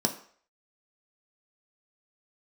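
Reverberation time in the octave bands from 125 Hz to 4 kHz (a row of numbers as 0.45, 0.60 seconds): 0.35, 0.40, 0.50, 0.50, 0.50, 0.50 seconds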